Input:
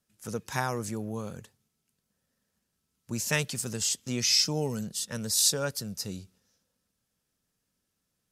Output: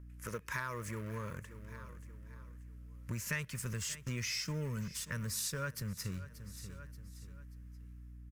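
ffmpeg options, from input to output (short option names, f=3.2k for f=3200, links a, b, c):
-filter_complex "[0:a]dynaudnorm=f=130:g=5:m=4.5dB,asplit=2[a][b];[b]acrusher=bits=4:mix=0:aa=0.000001,volume=-11dB[c];[a][c]amix=inputs=2:normalize=0,asubboost=boost=4.5:cutoff=200,aeval=exprs='val(0)+0.00447*(sin(2*PI*60*n/s)+sin(2*PI*2*60*n/s)/2+sin(2*PI*3*60*n/s)/3+sin(2*PI*4*60*n/s)/4+sin(2*PI*5*60*n/s)/5)':c=same,equalizer=f=125:t=o:w=1:g=-3,equalizer=f=250:t=o:w=1:g=-6,equalizer=f=1k:t=o:w=1:g=5,equalizer=f=2k:t=o:w=1:g=9,equalizer=f=4k:t=o:w=1:g=-8,equalizer=f=8k:t=o:w=1:g=-4,asoftclip=type=tanh:threshold=-6.5dB,asuperstop=centerf=770:order=4:qfactor=2.4,asplit=2[d][e];[e]aecho=0:1:582|1164|1746:0.0841|0.0294|0.0103[f];[d][f]amix=inputs=2:normalize=0,acompressor=threshold=-40dB:ratio=3,volume=-1dB"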